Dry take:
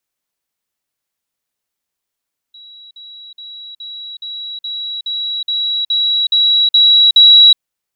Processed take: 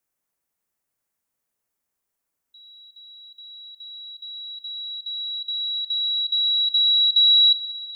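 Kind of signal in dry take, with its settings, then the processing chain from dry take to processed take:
level ladder 3.89 kHz -35.5 dBFS, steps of 3 dB, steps 12, 0.37 s 0.05 s
peaking EQ 3.7 kHz -9 dB 1.3 oct; Schroeder reverb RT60 3.3 s, combs from 32 ms, DRR 11 dB

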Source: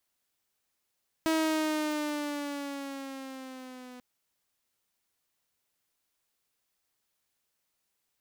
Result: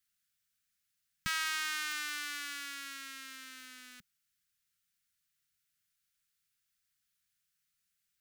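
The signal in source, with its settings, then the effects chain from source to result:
gliding synth tone saw, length 2.74 s, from 322 Hz, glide -4.5 st, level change -21 dB, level -21.5 dB
elliptic band-stop 190–1400 Hz, stop band 40 dB; waveshaping leveller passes 1

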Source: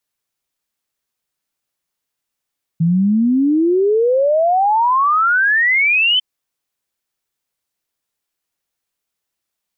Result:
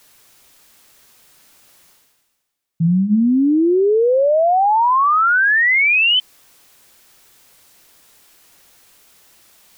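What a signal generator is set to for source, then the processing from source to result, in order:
log sweep 160 Hz -> 3.1 kHz 3.40 s -11 dBFS
hum notches 50/100/150/200 Hz; reverse; upward compressor, threshold -28 dBFS; reverse

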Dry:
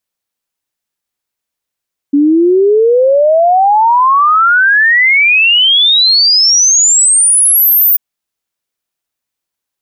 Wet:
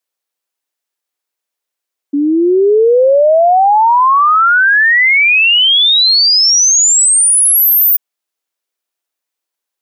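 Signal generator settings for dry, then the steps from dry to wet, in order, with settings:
log sweep 280 Hz -> 15 kHz 5.84 s -5 dBFS
Chebyshev high-pass 390 Hz, order 2

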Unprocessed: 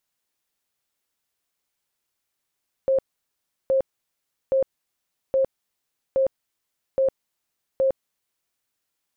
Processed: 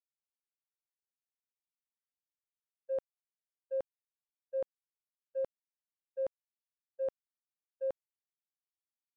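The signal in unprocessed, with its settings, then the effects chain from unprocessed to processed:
tone bursts 534 Hz, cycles 57, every 0.82 s, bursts 7, -16.5 dBFS
gate -19 dBFS, range -59 dB; bass shelf 490 Hz -9.5 dB

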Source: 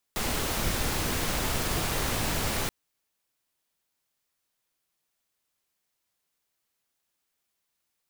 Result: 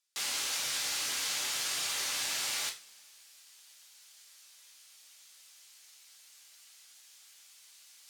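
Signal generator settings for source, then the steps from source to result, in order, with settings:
noise pink, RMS -28.5 dBFS 2.53 s
reverse; upward compressor, threshold -34 dBFS; reverse; band-pass filter 5.3 kHz, Q 0.83; two-slope reverb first 0.3 s, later 2.2 s, from -27 dB, DRR 0 dB

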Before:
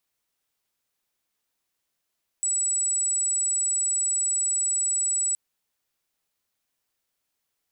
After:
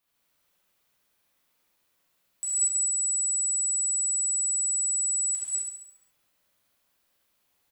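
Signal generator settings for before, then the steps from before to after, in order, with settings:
tone sine 7.88 kHz -22 dBFS 2.92 s
peaking EQ 7.2 kHz -5 dB 1.7 oct; feedback delay 69 ms, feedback 51%, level -4 dB; gated-style reverb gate 290 ms flat, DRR -6.5 dB

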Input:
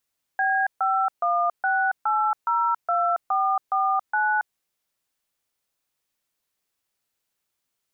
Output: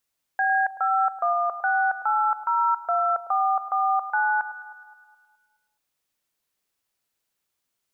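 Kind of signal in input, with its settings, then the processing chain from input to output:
DTMF "B516802449", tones 277 ms, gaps 139 ms, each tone -22 dBFS
echo whose repeats swap between lows and highs 105 ms, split 1.3 kHz, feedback 66%, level -13.5 dB

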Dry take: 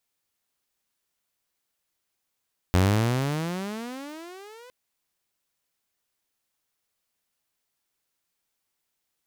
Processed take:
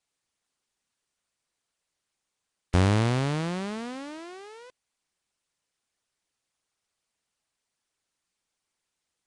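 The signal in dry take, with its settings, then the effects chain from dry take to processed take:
gliding synth tone saw, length 1.96 s, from 87.8 Hz, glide +30.5 st, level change -29 dB, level -14 dB
Nellymoser 44 kbps 22.05 kHz

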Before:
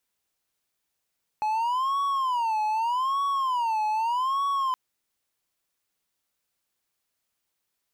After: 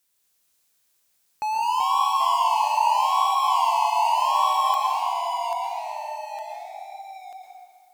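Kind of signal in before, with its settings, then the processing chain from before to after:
siren wail 854–1120 Hz 0.82 per s triangle -21 dBFS 3.32 s
treble shelf 3.4 kHz +10 dB; ever faster or slower copies 208 ms, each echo -2 st, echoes 3, each echo -6 dB; plate-style reverb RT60 2.1 s, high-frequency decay 0.7×, pre-delay 100 ms, DRR 0 dB

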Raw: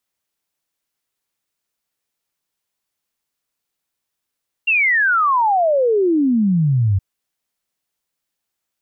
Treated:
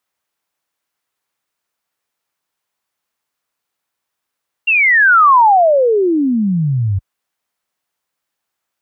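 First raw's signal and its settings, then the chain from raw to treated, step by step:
log sweep 2.8 kHz -> 92 Hz 2.32 s -12.5 dBFS
high-pass 47 Hz; peaking EQ 1.1 kHz +7.5 dB 2.3 oct

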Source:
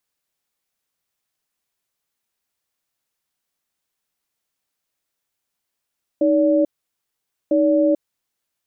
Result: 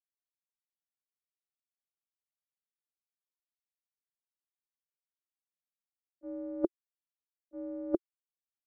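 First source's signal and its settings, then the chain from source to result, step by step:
cadence 311 Hz, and 574 Hz, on 0.44 s, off 0.86 s, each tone -16 dBFS 2.01 s
peaking EQ 350 Hz +9 dB 0.37 oct; reverse; compression 5:1, threshold -23 dBFS; reverse; gate -21 dBFS, range -44 dB

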